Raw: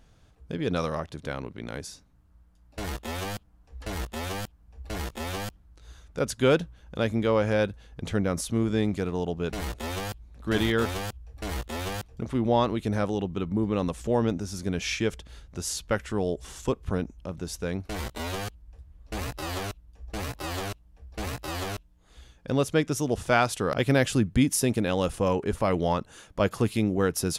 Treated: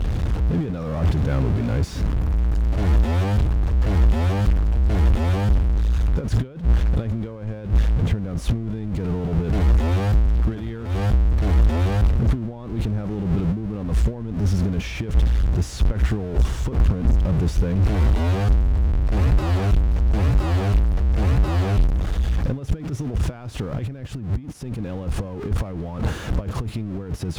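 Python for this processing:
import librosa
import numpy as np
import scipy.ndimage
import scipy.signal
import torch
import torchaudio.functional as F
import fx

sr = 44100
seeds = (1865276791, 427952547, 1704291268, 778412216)

y = x + 0.5 * 10.0 ** (-25.0 / 20.0) * np.sign(x)
y = scipy.signal.sosfilt(scipy.signal.butter(2, 49.0, 'highpass', fs=sr, output='sos'), y)
y = fx.transient(y, sr, attack_db=-3, sustain_db=8)
y = fx.over_compress(y, sr, threshold_db=-26.0, ratio=-0.5)
y = fx.riaa(y, sr, side='playback')
y = y * librosa.db_to_amplitude(-4.0)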